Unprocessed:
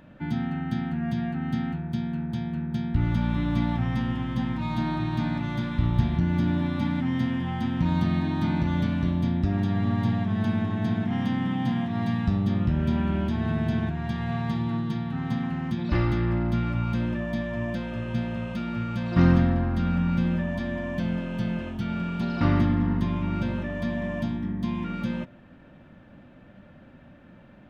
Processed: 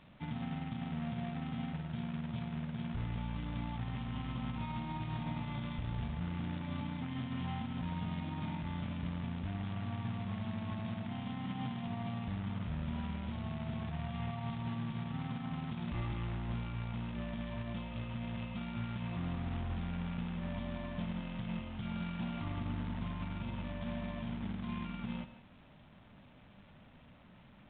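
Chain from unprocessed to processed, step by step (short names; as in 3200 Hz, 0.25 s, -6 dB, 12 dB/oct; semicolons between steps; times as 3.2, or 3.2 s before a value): fixed phaser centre 1600 Hz, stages 6; companded quantiser 4-bit; limiter -23.5 dBFS, peak gain reduction 11.5 dB; on a send at -13 dB: reverb RT60 0.35 s, pre-delay 95 ms; on the sum: gain -7.5 dB; A-law 64 kbps 8000 Hz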